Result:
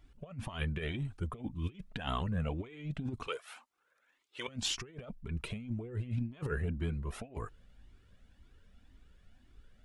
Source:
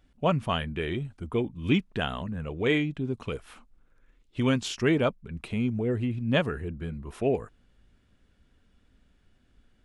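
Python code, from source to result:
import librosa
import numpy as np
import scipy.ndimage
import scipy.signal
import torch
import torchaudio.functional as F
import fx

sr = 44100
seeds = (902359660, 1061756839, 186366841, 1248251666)

y = fx.highpass(x, sr, hz=680.0, slope=12, at=(3.27, 4.48))
y = fx.over_compress(y, sr, threshold_db=-32.0, ratio=-0.5)
y = fx.comb_cascade(y, sr, direction='rising', hz=1.9)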